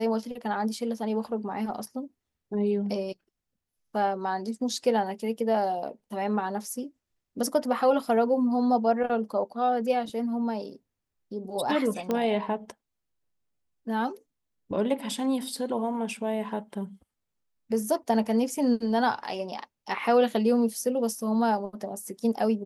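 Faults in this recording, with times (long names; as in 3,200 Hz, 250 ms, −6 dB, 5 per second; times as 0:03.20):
0:12.11: click −15 dBFS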